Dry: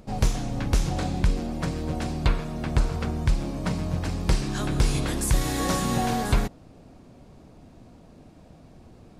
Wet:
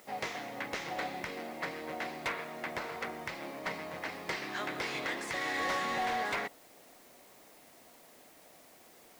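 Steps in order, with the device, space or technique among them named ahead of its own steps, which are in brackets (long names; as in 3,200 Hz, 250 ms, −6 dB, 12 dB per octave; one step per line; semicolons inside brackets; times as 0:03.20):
drive-through speaker (band-pass filter 520–3,600 Hz; parametric band 2,000 Hz +11 dB 0.32 octaves; hard clipping −26 dBFS, distortion −13 dB; white noise bed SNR 22 dB)
level −2.5 dB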